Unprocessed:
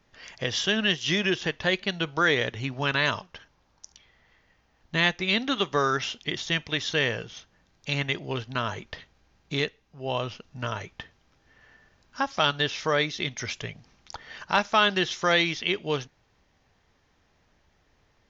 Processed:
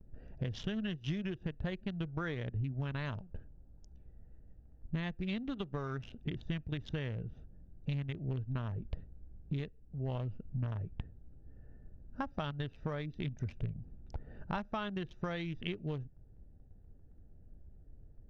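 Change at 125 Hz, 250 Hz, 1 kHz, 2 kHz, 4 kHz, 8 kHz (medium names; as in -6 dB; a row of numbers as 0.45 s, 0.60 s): -2.0 dB, -7.0 dB, -17.0 dB, -20.5 dB, -22.5 dB, no reading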